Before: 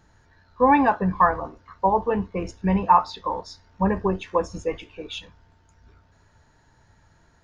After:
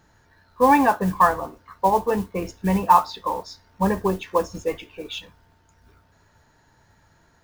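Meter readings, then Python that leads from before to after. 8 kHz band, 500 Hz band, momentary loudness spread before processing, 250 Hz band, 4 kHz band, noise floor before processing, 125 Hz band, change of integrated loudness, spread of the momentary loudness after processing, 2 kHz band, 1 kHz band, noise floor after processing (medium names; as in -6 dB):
no reading, +1.0 dB, 17 LU, +0.5 dB, +2.5 dB, -60 dBFS, 0.0 dB, +1.0 dB, 17 LU, +1.5 dB, +1.5 dB, -60 dBFS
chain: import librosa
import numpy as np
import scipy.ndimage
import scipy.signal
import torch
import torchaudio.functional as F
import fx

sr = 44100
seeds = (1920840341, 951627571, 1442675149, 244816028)

y = fx.mod_noise(x, sr, seeds[0], snr_db=24)
y = fx.low_shelf(y, sr, hz=98.0, db=-6.5)
y = F.gain(torch.from_numpy(y), 1.5).numpy()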